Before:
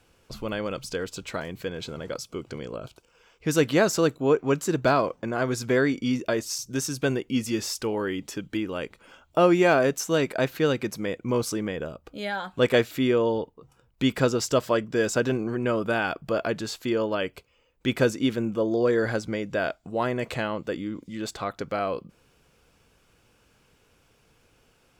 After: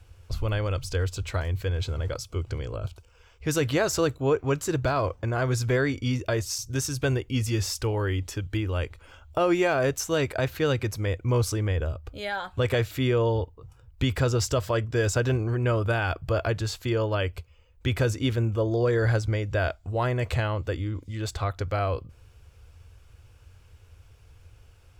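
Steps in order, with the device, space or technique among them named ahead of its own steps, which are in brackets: car stereo with a boomy subwoofer (resonant low shelf 130 Hz +13 dB, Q 3; peak limiter -14.5 dBFS, peak gain reduction 6 dB)

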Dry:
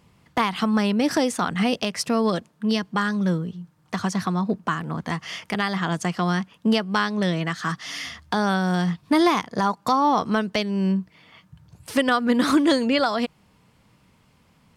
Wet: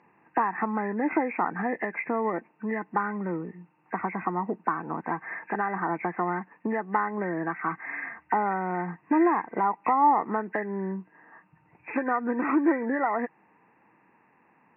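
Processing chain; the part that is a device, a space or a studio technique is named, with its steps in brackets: hearing aid with frequency lowering (knee-point frequency compression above 1.5 kHz 4:1; compression 3:1, threshold -22 dBFS, peak gain reduction 7 dB; cabinet simulation 310–6300 Hz, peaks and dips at 330 Hz +6 dB, 580 Hz -5 dB, 860 Hz +8 dB, 1.6 kHz -6 dB, 2.3 kHz -9 dB, 4.8 kHz +4 dB)

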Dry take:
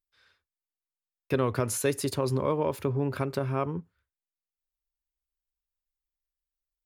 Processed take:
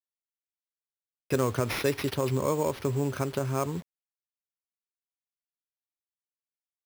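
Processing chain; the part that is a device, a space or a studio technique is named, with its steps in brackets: early 8-bit sampler (sample-rate reducer 7.6 kHz, jitter 0%; bit crusher 8-bit)

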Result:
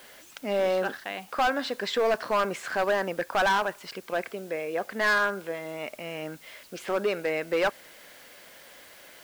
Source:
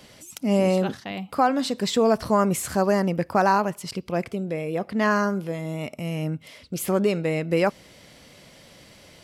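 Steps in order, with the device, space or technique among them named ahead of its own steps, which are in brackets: drive-through speaker (band-pass 450–3700 Hz; peaking EQ 1.6 kHz +9 dB 0.32 oct; hard clipper -19.5 dBFS, distortion -8 dB; white noise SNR 25 dB)

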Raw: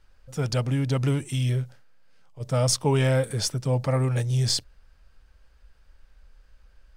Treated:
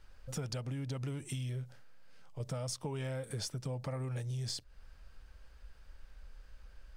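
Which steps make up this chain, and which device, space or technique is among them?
serial compression, leveller first (compression 2:1, threshold -26 dBFS, peak gain reduction 5 dB; compression 6:1, threshold -38 dBFS, peak gain reduction 15 dB); trim +1 dB

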